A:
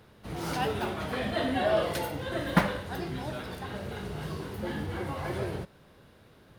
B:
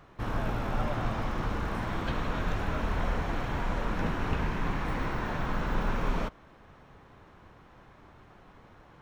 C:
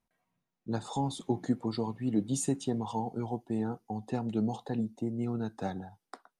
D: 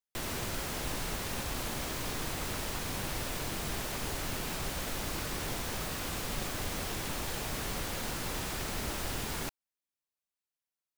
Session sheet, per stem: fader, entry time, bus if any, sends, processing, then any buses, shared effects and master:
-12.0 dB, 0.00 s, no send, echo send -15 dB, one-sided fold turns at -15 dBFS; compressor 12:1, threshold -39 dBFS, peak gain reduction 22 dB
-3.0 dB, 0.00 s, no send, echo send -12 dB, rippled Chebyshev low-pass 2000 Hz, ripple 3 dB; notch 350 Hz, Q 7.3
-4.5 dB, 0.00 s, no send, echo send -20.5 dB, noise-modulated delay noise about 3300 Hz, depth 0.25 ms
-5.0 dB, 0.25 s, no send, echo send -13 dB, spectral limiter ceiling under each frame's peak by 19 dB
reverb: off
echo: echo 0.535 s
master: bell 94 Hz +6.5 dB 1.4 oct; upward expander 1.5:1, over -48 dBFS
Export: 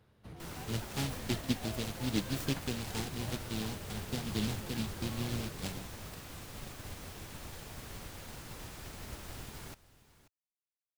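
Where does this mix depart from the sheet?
stem A -12.0 dB -> -2.0 dB; stem B: muted; stem D: missing spectral limiter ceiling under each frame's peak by 19 dB

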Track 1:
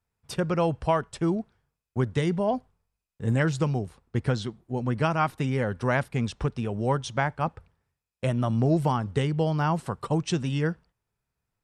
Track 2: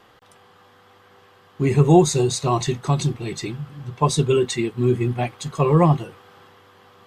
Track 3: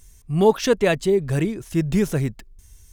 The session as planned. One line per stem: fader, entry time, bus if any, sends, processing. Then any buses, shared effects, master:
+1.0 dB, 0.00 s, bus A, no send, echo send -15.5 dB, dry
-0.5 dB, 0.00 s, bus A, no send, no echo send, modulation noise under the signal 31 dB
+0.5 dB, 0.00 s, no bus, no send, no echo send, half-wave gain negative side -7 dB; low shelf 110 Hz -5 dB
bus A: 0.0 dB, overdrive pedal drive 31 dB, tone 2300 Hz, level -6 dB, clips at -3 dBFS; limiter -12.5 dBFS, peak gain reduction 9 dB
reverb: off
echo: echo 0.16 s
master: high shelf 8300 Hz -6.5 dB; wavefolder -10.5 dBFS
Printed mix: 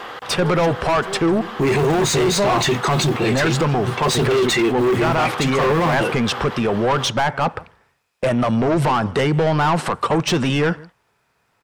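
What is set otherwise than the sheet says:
stem 3 +0.5 dB -> -10.5 dB; master: missing high shelf 8300 Hz -6.5 dB

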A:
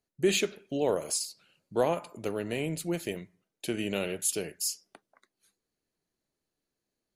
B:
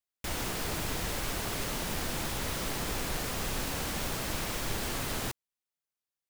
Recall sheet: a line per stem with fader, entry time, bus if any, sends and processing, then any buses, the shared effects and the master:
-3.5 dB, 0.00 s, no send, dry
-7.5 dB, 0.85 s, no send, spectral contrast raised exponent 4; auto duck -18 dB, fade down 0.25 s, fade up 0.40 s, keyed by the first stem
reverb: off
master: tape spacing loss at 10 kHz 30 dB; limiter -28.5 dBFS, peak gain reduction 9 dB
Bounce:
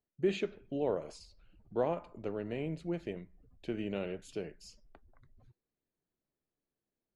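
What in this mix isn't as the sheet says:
stem B: entry 0.85 s -> 0.20 s; master: missing limiter -28.5 dBFS, peak gain reduction 9 dB

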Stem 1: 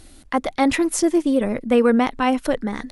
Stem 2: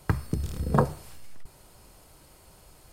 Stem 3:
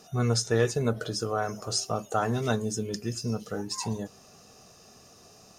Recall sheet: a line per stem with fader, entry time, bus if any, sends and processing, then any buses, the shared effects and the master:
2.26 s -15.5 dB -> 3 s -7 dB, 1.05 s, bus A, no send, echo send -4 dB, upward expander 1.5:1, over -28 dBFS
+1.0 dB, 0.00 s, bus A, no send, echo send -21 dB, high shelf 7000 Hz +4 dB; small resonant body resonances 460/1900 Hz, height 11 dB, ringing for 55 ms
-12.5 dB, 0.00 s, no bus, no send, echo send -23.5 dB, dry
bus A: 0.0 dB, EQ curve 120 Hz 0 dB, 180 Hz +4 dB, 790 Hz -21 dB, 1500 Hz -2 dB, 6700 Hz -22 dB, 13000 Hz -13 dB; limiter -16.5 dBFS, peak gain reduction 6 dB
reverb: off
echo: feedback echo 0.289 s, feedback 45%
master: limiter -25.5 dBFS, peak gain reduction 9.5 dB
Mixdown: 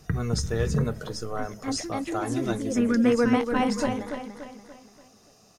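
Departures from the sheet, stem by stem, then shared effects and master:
stem 1 -15.5 dB -> -9.0 dB; stem 3 -12.5 dB -> -4.0 dB; master: missing limiter -25.5 dBFS, peak gain reduction 9.5 dB

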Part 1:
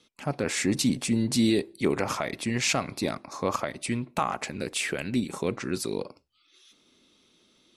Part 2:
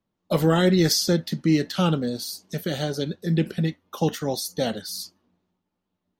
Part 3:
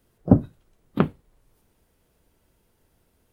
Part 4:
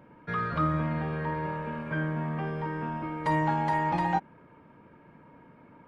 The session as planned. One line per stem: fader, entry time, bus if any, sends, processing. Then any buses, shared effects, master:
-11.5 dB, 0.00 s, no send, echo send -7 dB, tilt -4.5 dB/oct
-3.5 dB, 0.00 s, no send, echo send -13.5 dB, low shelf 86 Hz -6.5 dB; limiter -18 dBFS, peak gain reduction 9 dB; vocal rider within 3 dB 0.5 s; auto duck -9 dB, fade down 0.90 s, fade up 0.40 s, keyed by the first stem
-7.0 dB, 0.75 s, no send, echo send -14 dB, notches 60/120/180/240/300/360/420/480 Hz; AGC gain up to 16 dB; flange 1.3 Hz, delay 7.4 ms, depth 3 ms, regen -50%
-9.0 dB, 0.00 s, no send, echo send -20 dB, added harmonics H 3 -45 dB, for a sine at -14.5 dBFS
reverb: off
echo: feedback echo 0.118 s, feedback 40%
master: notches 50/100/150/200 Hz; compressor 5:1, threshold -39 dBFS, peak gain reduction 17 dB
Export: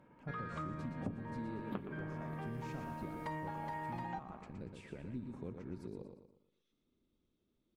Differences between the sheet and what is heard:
stem 1 -11.5 dB -> -23.0 dB; stem 2: muted; master: missing notches 50/100/150/200 Hz

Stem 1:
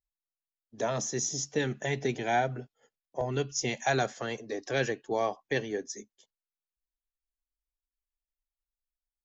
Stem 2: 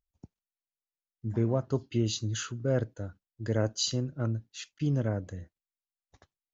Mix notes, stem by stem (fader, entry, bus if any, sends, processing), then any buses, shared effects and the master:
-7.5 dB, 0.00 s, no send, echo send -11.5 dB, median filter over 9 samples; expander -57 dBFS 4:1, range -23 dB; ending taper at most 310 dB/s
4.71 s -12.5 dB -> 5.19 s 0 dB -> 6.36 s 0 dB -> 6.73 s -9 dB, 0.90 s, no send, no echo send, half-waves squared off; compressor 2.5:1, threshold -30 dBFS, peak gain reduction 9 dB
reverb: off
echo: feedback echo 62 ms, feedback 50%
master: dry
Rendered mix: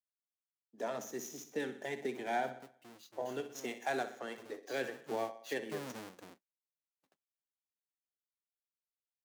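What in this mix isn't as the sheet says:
stem 2 -12.5 dB -> -23.0 dB; master: extra HPF 200 Hz 24 dB/oct

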